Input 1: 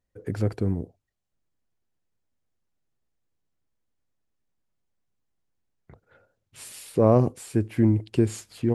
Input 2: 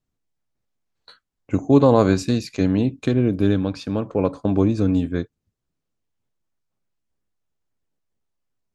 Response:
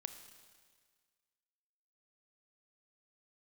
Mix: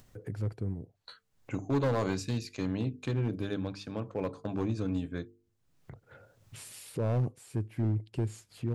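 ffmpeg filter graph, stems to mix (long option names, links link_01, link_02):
-filter_complex "[0:a]volume=-4.5dB[link_01];[1:a]lowshelf=frequency=440:gain=-6.5,bandreject=frequency=50:width_type=h:width=6,bandreject=frequency=100:width_type=h:width=6,bandreject=frequency=150:width_type=h:width=6,bandreject=frequency=200:width_type=h:width=6,bandreject=frequency=250:width_type=h:width=6,bandreject=frequency=300:width_type=h:width=6,bandreject=frequency=350:width_type=h:width=6,bandreject=frequency=400:width_type=h:width=6,bandreject=frequency=450:width_type=h:width=6,volume=-9dB,asplit=2[link_02][link_03];[link_03]apad=whole_len=385778[link_04];[link_01][link_04]sidechaingate=range=-8dB:threshold=-48dB:ratio=16:detection=peak[link_05];[link_05][link_02]amix=inputs=2:normalize=0,acompressor=mode=upward:threshold=-39dB:ratio=2.5,equalizer=frequency=120:width_type=o:width=0.73:gain=8,asoftclip=type=hard:threshold=-23.5dB"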